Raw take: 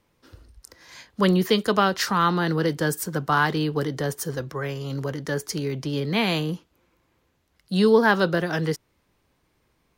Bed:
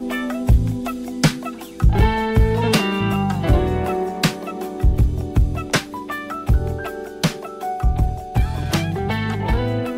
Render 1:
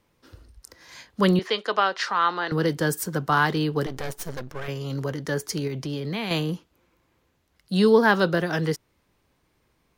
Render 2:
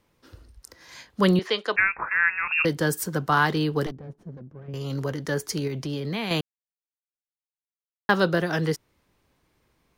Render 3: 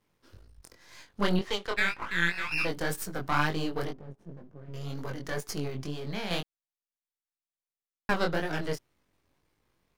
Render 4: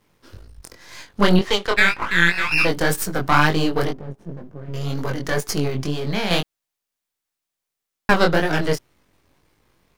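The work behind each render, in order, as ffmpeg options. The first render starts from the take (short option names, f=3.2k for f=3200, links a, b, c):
-filter_complex "[0:a]asettb=1/sr,asplit=3[a][b][c];[a]atrim=end=1.394[d];[b]atrim=start=1.39:end=2.52,asetpts=PTS-STARTPTS,afade=t=in:d=0.004:c=qsin,afade=t=out:st=1.126:d=0.004:c=qsin,highpass=550,lowpass=4.2k[e];[c]atrim=start=2.516[f];[d][e]acrossfade=d=0.004:c1=hsin:c2=qsin[g];[g][f]acrossfade=d=0.004:c1=qsin:c2=hsin,asettb=1/sr,asplit=3[h][i][j];[h]atrim=end=3.864[k];[i]atrim=start=3.86:end=4.68,asetpts=PTS-STARTPTS,afade=t=in:d=0.004:c=qsin,afade=t=out:st=0.816:d=0.004:c=qsin,aeval=exprs='max(val(0),0)':c=same[l];[j]atrim=start=4.676[m];[k][l]acrossfade=d=0.004:c1=hsin:c2=qsin[n];[n][m]acrossfade=d=0.004:c1=qsin:c2=hsin,asettb=1/sr,asplit=3[o][p][q];[o]atrim=end=5.674[r];[p]atrim=start=5.67:end=6.31,asetpts=PTS-STARTPTS,afade=t=in:d=0.004:c=qsin,afade=t=out:st=0.636:d=0.004:c=qsin,acompressor=threshold=-25dB:ratio=6:attack=3.2:release=140:knee=1:detection=peak[s];[q]atrim=start=6.306[t];[r][s]acrossfade=d=0.004:c1=hsin:c2=qsin[u];[u][t]acrossfade=d=0.004:c1=qsin:c2=hsin"
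-filter_complex "[0:a]asettb=1/sr,asplit=3[a][b][c];[a]atrim=end=1.764[d];[b]atrim=start=1.76:end=2.65,asetpts=PTS-STARTPTS,afade=t=in:d=0.004:c=qsin,afade=t=out:st=0.886:d=0.004:c=qsin,lowpass=f=2.5k:t=q:w=0.5098,lowpass=f=2.5k:t=q:w=0.6013,lowpass=f=2.5k:t=q:w=0.9,lowpass=f=2.5k:t=q:w=2.563,afreqshift=-2900[e];[c]atrim=start=2.646[f];[d][e]acrossfade=d=0.004:c1=hsin:c2=qsin[g];[g][f]acrossfade=d=0.004:c1=qsin:c2=hsin,asettb=1/sr,asplit=3[h][i][j];[h]atrim=end=3.914[k];[i]atrim=start=3.91:end=4.74,asetpts=PTS-STARTPTS,afade=t=in:d=0.004:c=qsin,afade=t=out:st=0.826:d=0.004:c=qsin,bandpass=f=180:t=q:w=1.5[l];[j]atrim=start=4.736[m];[k][l]acrossfade=d=0.004:c1=hsin:c2=qsin[n];[n][m]acrossfade=d=0.004:c1=qsin:c2=hsin,asplit=3[o][p][q];[o]atrim=end=6.41,asetpts=PTS-STARTPTS,afade=t=out:st=6.406:d=0.004:c=hsin[r];[p]atrim=start=6.41:end=8.09,asetpts=PTS-STARTPTS,volume=0[s];[q]atrim=start=8.09,asetpts=PTS-STARTPTS,afade=t=in:d=0.004:c=hsin[t];[r][s][t]concat=n=3:v=0:a=1"
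-af "aeval=exprs='if(lt(val(0),0),0.251*val(0),val(0))':c=same,flanger=delay=19:depth=4.9:speed=2"
-af "volume=11.5dB,alimiter=limit=-1dB:level=0:latency=1"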